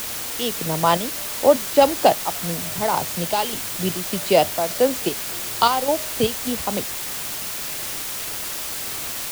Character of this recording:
chopped level 1.7 Hz, depth 60%, duty 65%
a quantiser's noise floor 6 bits, dither triangular

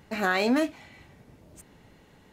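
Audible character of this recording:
background noise floor −57 dBFS
spectral slope −2.5 dB per octave

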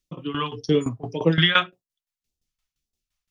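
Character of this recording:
phaser sweep stages 2, 1.8 Hz, lowest notch 320–1,500 Hz
tremolo saw down 5.8 Hz, depth 85%

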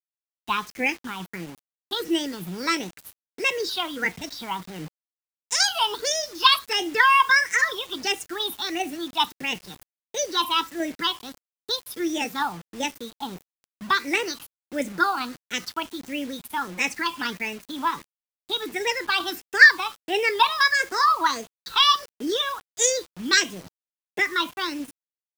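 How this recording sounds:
phaser sweep stages 6, 1.5 Hz, lowest notch 490–1,200 Hz
tremolo saw down 2.5 Hz, depth 30%
a quantiser's noise floor 8 bits, dither none

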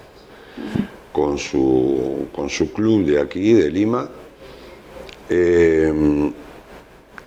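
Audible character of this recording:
a quantiser's noise floor 12 bits, dither triangular
amplitude modulation by smooth noise

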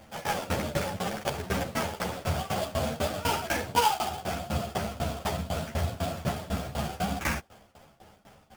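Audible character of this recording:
aliases and images of a low sample rate 4,000 Hz, jitter 20%
tremolo saw down 4 Hz, depth 95%
a shimmering, thickened sound

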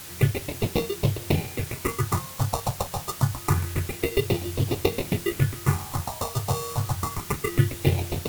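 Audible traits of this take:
aliases and images of a low sample rate 1,600 Hz, jitter 0%
phaser sweep stages 4, 0.27 Hz, lowest notch 330–1,500 Hz
a quantiser's noise floor 8 bits, dither triangular
Ogg Vorbis

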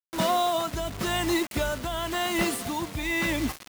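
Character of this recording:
a quantiser's noise floor 6 bits, dither none
tremolo triangle 0.93 Hz, depth 60%

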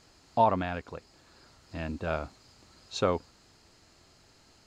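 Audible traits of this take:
background noise floor −61 dBFS
spectral slope −4.5 dB per octave

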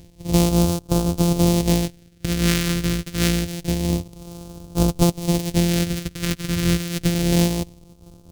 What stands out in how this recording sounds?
a buzz of ramps at a fixed pitch in blocks of 256 samples
phaser sweep stages 2, 0.27 Hz, lowest notch 790–1,800 Hz
amplitude modulation by smooth noise

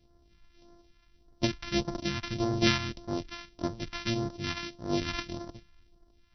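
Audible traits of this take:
a buzz of ramps at a fixed pitch in blocks of 128 samples
phaser sweep stages 2, 1.7 Hz, lowest notch 440–2,500 Hz
MP2

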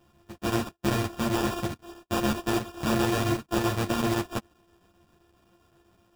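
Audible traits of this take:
a buzz of ramps at a fixed pitch in blocks of 128 samples
chopped level 7.7 Hz, depth 60%, duty 85%
aliases and images of a low sample rate 2,100 Hz, jitter 0%
a shimmering, thickened sound

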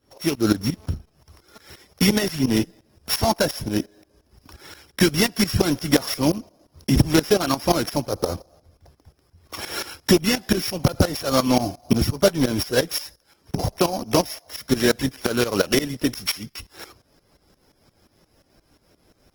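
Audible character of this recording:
a buzz of ramps at a fixed pitch in blocks of 8 samples
tremolo saw up 5.7 Hz, depth 85%
Opus

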